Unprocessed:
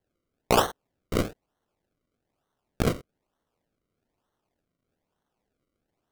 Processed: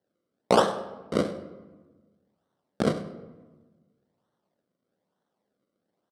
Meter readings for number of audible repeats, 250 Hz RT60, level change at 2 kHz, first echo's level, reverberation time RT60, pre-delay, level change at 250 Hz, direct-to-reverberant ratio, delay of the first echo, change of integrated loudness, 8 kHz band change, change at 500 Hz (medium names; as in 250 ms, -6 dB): 1, 1.7 s, -1.5 dB, -17.0 dB, 1.3 s, 28 ms, +2.0 dB, 10.0 dB, 99 ms, +0.5 dB, -5.5 dB, +3.0 dB